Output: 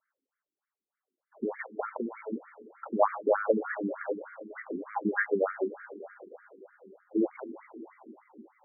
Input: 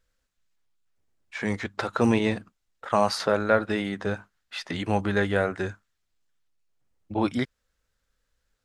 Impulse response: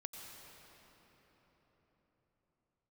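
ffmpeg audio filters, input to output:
-filter_complex "[0:a]lowpass=2600,asettb=1/sr,asplit=3[link_01][link_02][link_03];[link_01]atrim=end=1.814[link_04];[link_02]atrim=start=1.81:end=2.33,asetpts=PTS-STARTPTS,afade=type=in:duration=0.004:curve=qsin,afade=type=out:start_time=0.516:duration=0.004:curve=qsin,acompressor=threshold=-29dB:ratio=6[link_05];[link_03]atrim=start=2.326[link_06];[link_04][link_05]acrossfade=duration=0.004:curve1=hsin:curve2=qsin[link_07];[link_07][link_06]acrossfade=duration=0.004:curve1=qsin:curve2=hsin,asplit=2[link_08][link_09];[1:a]atrim=start_sample=2205[link_10];[link_09][link_10]afir=irnorm=-1:irlink=0,volume=-4dB[link_11];[link_08][link_11]amix=inputs=2:normalize=0,afftfilt=real='re*between(b*sr/1024,290*pow(1700/290,0.5+0.5*sin(2*PI*3.3*pts/sr))/1.41,290*pow(1700/290,0.5+0.5*sin(2*PI*3.3*pts/sr))*1.41)':imag='im*between(b*sr/1024,290*pow(1700/290,0.5+0.5*sin(2*PI*3.3*pts/sr))/1.41,290*pow(1700/290,0.5+0.5*sin(2*PI*3.3*pts/sr))*1.41)':win_size=1024:overlap=0.75"

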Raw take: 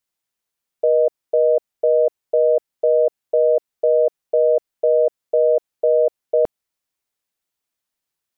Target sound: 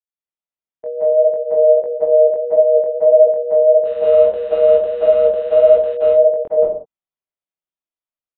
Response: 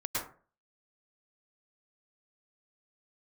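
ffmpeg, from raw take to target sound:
-filter_complex "[0:a]agate=range=-11dB:threshold=-23dB:ratio=16:detection=peak,dynaudnorm=framelen=250:gausssize=9:maxgain=3dB,asettb=1/sr,asplit=3[link_01][link_02][link_03];[link_01]atrim=end=3.854[link_04];[link_02]atrim=start=3.85:end=5.95,asetpts=PTS-STARTPTS,afade=type=in:duration=0.004:curve=qsin,afade=type=out:start_time=2.096:duration=0.004:curve=qsin,aeval=exprs='val(0)*gte(abs(val(0)),0.0794)':channel_layout=same[link_05];[link_03]atrim=start=5.946[link_06];[link_04][link_05]acrossfade=duration=0.004:curve1=hsin:curve2=qsin[link_07];[link_07][link_06]acrossfade=duration=0.004:curve1=qsin:curve2=hsin,flanger=delay=18.5:depth=4.8:speed=1.6[link_08];[1:a]atrim=start_sample=2205,afade=type=out:start_time=0.27:duration=0.01,atrim=end_sample=12348,asetrate=26460,aresample=44100[link_09];[link_08][link_09]afir=irnorm=-1:irlink=0,aresample=8000,aresample=44100,volume=-8dB"

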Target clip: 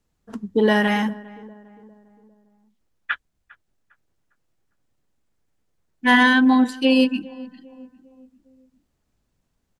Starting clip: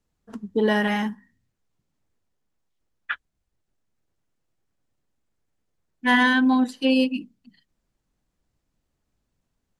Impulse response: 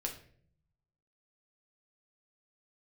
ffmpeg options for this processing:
-filter_complex "[0:a]asplit=2[link_01][link_02];[link_02]adelay=403,lowpass=frequency=1200:poles=1,volume=-19.5dB,asplit=2[link_03][link_04];[link_04]adelay=403,lowpass=frequency=1200:poles=1,volume=0.49,asplit=2[link_05][link_06];[link_06]adelay=403,lowpass=frequency=1200:poles=1,volume=0.49,asplit=2[link_07][link_08];[link_08]adelay=403,lowpass=frequency=1200:poles=1,volume=0.49[link_09];[link_01][link_03][link_05][link_07][link_09]amix=inputs=5:normalize=0,volume=3.5dB"

